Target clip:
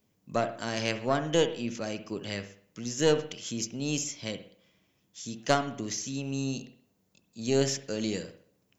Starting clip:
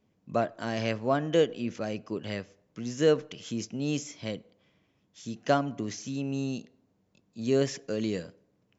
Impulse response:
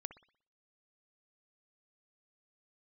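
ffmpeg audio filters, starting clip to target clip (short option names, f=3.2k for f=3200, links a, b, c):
-filter_complex "[0:a]aeval=exprs='0.316*(cos(1*acos(clip(val(0)/0.316,-1,1)))-cos(1*PI/2))+0.0891*(cos(2*acos(clip(val(0)/0.316,-1,1)))-cos(2*PI/2))+0.00708*(cos(4*acos(clip(val(0)/0.316,-1,1)))-cos(4*PI/2))':c=same,aemphasis=mode=production:type=75kf[a];[1:a]atrim=start_sample=2205[b];[a][b]afir=irnorm=-1:irlink=0,volume=2dB"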